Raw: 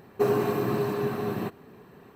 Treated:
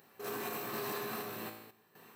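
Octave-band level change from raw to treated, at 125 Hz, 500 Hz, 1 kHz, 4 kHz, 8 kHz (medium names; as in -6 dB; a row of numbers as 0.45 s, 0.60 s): -20.0 dB, -16.0 dB, -9.0 dB, -1.0 dB, +2.0 dB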